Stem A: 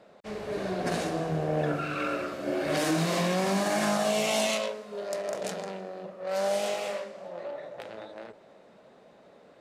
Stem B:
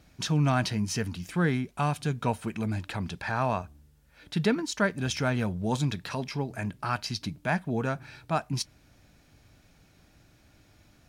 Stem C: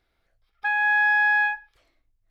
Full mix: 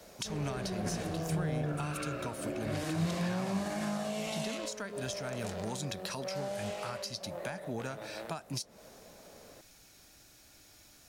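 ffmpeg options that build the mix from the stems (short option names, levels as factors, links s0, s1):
-filter_complex "[0:a]volume=0.944[s0];[1:a]bass=f=250:g=-11,treble=f=4000:g=12,acompressor=threshold=0.0355:ratio=6,volume=1[s1];[s0][s1]amix=inputs=2:normalize=0,lowshelf=f=64:g=8,acrossover=split=180[s2][s3];[s3]acompressor=threshold=0.0158:ratio=6[s4];[s2][s4]amix=inputs=2:normalize=0"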